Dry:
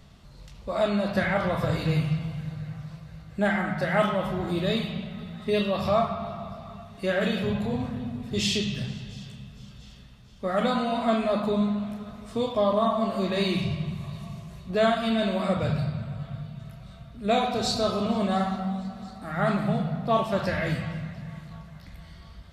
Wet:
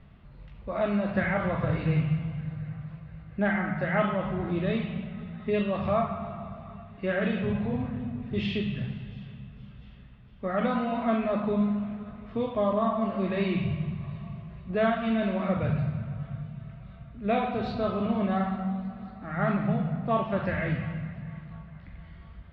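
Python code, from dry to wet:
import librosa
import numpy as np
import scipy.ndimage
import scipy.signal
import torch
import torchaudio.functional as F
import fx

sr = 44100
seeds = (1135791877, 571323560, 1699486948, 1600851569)

y = scipy.signal.sosfilt(scipy.signal.butter(4, 2600.0, 'lowpass', fs=sr, output='sos'), x)
y = fx.peak_eq(y, sr, hz=760.0, db=-3.5, octaves=2.1)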